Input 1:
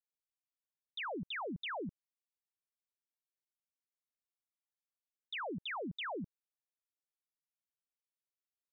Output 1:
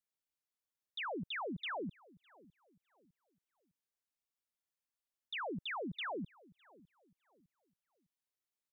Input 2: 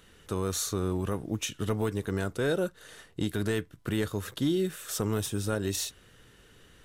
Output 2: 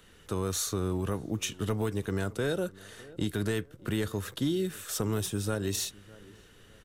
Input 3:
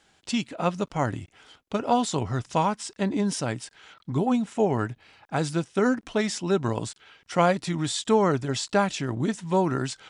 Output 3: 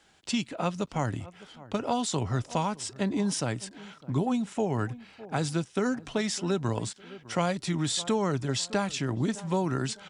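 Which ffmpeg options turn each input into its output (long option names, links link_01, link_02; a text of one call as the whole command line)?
ffmpeg -i in.wav -filter_complex "[0:a]asplit=2[link_01][link_02];[link_02]adelay=606,lowpass=frequency=1300:poles=1,volume=-22dB,asplit=2[link_03][link_04];[link_04]adelay=606,lowpass=frequency=1300:poles=1,volume=0.36,asplit=2[link_05][link_06];[link_06]adelay=606,lowpass=frequency=1300:poles=1,volume=0.36[link_07];[link_03][link_05][link_07]amix=inputs=3:normalize=0[link_08];[link_01][link_08]amix=inputs=2:normalize=0,acrossover=split=160|3000[link_09][link_10][link_11];[link_10]acompressor=threshold=-28dB:ratio=2.5[link_12];[link_09][link_12][link_11]amix=inputs=3:normalize=0" out.wav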